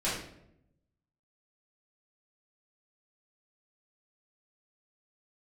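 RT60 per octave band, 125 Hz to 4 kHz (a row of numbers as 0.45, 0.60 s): 1.3, 1.1, 0.90, 0.65, 0.60, 0.50 s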